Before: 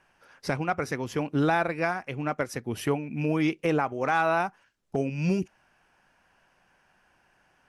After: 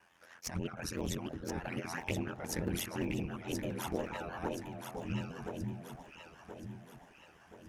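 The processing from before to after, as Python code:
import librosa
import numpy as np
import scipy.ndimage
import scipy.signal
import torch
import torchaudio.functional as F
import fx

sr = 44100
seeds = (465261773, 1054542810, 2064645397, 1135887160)

p1 = fx.pitch_trill(x, sr, semitones=2.0, every_ms=84)
p2 = scipy.signal.sosfilt(scipy.signal.butter(4, 69.0, 'highpass', fs=sr, output='sos'), p1)
p3 = fx.high_shelf(p2, sr, hz=5100.0, db=5.0)
p4 = fx.over_compress(p3, sr, threshold_db=-34.0, ratio=-1.0)
p5 = fx.env_flanger(p4, sr, rest_ms=9.2, full_db=-26.5)
p6 = fx.schmitt(p5, sr, flips_db=-25.5)
p7 = p5 + (p6 * librosa.db_to_amplitude(-6.0))
p8 = p7 * np.sin(2.0 * np.pi * 43.0 * np.arange(len(p7)) / sr)
p9 = fx.echo_alternate(p8, sr, ms=513, hz=820.0, feedback_pct=68, wet_db=-2.5)
y = p9 * librosa.db_to_amplitude(-1.5)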